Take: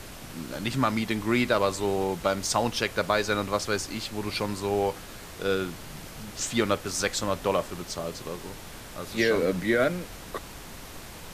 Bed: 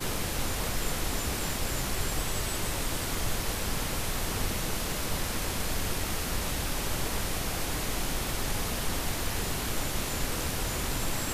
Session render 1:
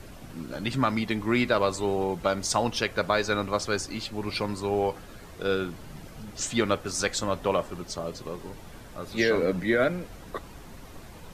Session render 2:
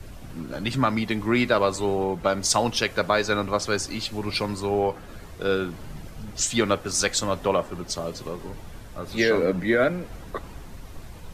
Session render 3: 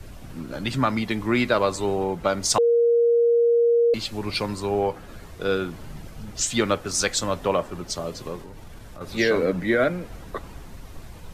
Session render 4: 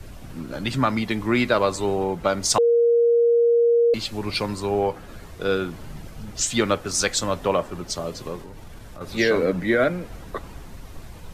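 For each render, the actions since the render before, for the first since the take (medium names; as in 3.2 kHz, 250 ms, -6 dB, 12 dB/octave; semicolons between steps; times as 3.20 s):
noise reduction 9 dB, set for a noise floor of -43 dBFS
in parallel at +2.5 dB: compression, threshold -34 dBFS, peak gain reduction 14.5 dB; on the sum: three bands expanded up and down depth 40%
2.58–3.94 s: bleep 470 Hz -15 dBFS; 8.41–9.01 s: compression, threshold -36 dBFS
trim +1 dB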